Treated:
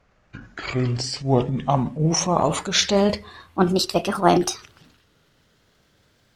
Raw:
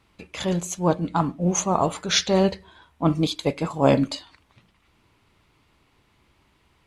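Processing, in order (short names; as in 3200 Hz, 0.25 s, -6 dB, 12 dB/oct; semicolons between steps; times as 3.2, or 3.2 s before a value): speed glide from 54% -> 162%; transient shaper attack +3 dB, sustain +8 dB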